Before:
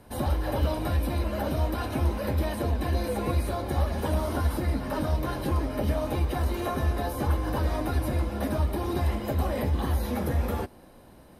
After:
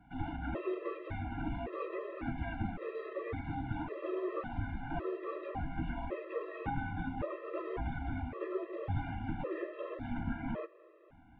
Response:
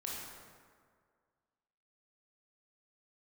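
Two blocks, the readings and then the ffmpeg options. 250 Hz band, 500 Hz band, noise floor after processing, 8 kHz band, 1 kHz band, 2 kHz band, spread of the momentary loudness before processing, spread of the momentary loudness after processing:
−9.0 dB, −8.0 dB, −60 dBFS, below −35 dB, −9.0 dB, −6.5 dB, 2 LU, 3 LU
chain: -filter_complex "[0:a]highpass=frequency=270:width_type=q:width=0.5412,highpass=frequency=270:width_type=q:width=1.307,lowpass=frequency=2900:width_type=q:width=0.5176,lowpass=frequency=2900:width_type=q:width=0.7071,lowpass=frequency=2900:width_type=q:width=1.932,afreqshift=-250,asplit=2[link_01][link_02];[1:a]atrim=start_sample=2205[link_03];[link_02][link_03]afir=irnorm=-1:irlink=0,volume=-17dB[link_04];[link_01][link_04]amix=inputs=2:normalize=0,afftfilt=real='re*gt(sin(2*PI*0.9*pts/sr)*(1-2*mod(floor(b*sr/1024/340),2)),0)':imag='im*gt(sin(2*PI*0.9*pts/sr)*(1-2*mod(floor(b*sr/1024/340),2)),0)':win_size=1024:overlap=0.75,volume=-2.5dB"

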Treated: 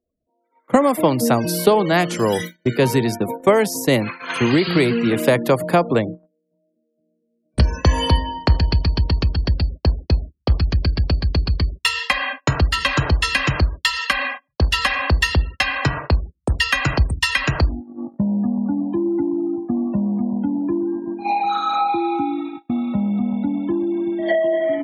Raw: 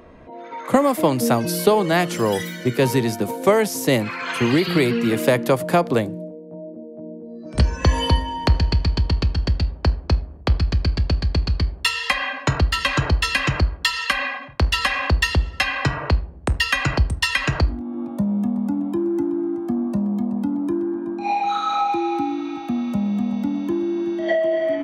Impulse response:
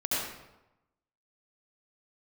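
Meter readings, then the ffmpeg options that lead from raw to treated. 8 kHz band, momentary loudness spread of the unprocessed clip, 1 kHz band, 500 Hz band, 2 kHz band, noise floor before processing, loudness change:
+0.5 dB, 7 LU, +1.5 dB, +1.5 dB, +1.5 dB, −38 dBFS, +1.5 dB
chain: -af "afftfilt=real='re*gte(hypot(re,im),0.0158)':imag='im*gte(hypot(re,im),0.0158)':win_size=1024:overlap=0.75,agate=range=-35dB:threshold=-27dB:ratio=16:detection=peak,volume=1.5dB"

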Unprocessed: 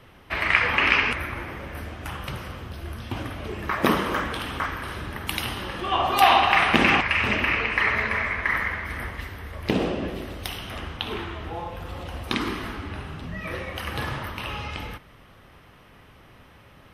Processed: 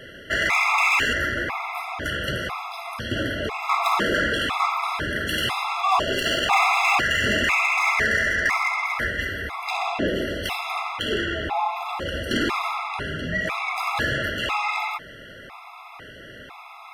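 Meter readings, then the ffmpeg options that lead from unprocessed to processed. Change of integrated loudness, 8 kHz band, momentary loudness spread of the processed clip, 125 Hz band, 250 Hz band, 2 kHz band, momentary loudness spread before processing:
+1.5 dB, +7.0 dB, 15 LU, −1.5 dB, −0.5 dB, +2.5 dB, 17 LU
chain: -filter_complex "[0:a]volume=19.5dB,asoftclip=hard,volume=-19.5dB,asplit=2[link_01][link_02];[link_02]highpass=frequency=720:poles=1,volume=16dB,asoftclip=type=tanh:threshold=-19dB[link_03];[link_01][link_03]amix=inputs=2:normalize=0,lowpass=frequency=3300:poles=1,volume=-6dB,afftfilt=real='re*gt(sin(2*PI*1*pts/sr)*(1-2*mod(floor(b*sr/1024/680),2)),0)':imag='im*gt(sin(2*PI*1*pts/sr)*(1-2*mod(floor(b*sr/1024/680),2)),0)':win_size=1024:overlap=0.75,volume=6dB"

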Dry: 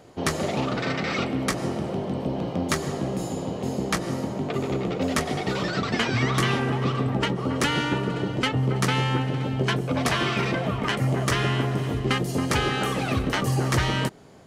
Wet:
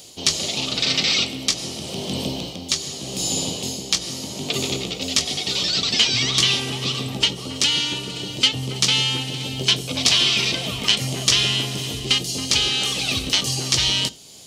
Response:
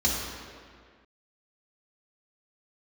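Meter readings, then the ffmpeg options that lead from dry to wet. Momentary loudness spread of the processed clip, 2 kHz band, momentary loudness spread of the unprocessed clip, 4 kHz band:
9 LU, +1.5 dB, 5 LU, +14.5 dB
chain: -filter_complex "[0:a]acrossover=split=6600[link_01][link_02];[link_02]acompressor=threshold=-57dB:ratio=4:attack=1:release=60[link_03];[link_01][link_03]amix=inputs=2:normalize=0,highshelf=frequency=2600:width_type=q:width=1.5:gain=8.5,aexciter=amount=5.1:drive=1.5:freq=2200,dynaudnorm=framelen=200:gausssize=5:maxgain=11.5dB,asplit=2[link_04][link_05];[1:a]atrim=start_sample=2205,atrim=end_sample=3528,adelay=16[link_06];[link_05][link_06]afir=irnorm=-1:irlink=0,volume=-26.5dB[link_07];[link_04][link_07]amix=inputs=2:normalize=0,volume=-1.5dB"

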